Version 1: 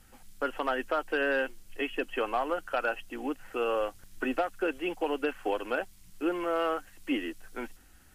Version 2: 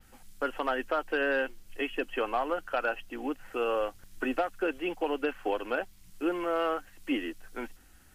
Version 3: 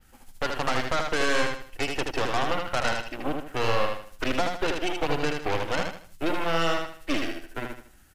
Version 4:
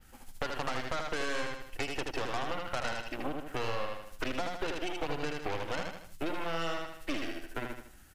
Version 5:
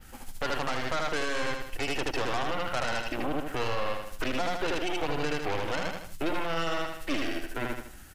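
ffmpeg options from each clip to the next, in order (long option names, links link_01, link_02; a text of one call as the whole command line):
ffmpeg -i in.wav -af "adynamicequalizer=threshold=0.001:dfrequency=9300:dqfactor=0.82:tfrequency=9300:tqfactor=0.82:attack=5:release=100:ratio=0.375:range=2.5:mode=cutabove:tftype=bell" out.wav
ffmpeg -i in.wav -af "aeval=exprs='0.119*(cos(1*acos(clip(val(0)/0.119,-1,1)))-cos(1*PI/2))+0.0422*(cos(6*acos(clip(val(0)/0.119,-1,1)))-cos(6*PI/2))':channel_layout=same,aecho=1:1:78|156|234|312:0.596|0.203|0.0689|0.0234" out.wav
ffmpeg -i in.wav -af "acompressor=threshold=-32dB:ratio=3" out.wav
ffmpeg -i in.wav -af "alimiter=level_in=4dB:limit=-24dB:level=0:latency=1:release=19,volume=-4dB,volume=8dB" out.wav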